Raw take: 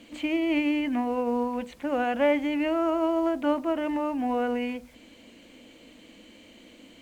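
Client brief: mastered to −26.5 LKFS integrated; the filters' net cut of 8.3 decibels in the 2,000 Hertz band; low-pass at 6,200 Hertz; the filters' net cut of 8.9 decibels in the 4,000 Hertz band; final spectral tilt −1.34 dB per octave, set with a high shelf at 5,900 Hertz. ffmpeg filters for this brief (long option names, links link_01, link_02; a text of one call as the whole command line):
ffmpeg -i in.wav -af "lowpass=6200,equalizer=frequency=2000:width_type=o:gain=-8.5,equalizer=frequency=4000:width_type=o:gain=-7.5,highshelf=frequency=5900:gain=-3,volume=1dB" out.wav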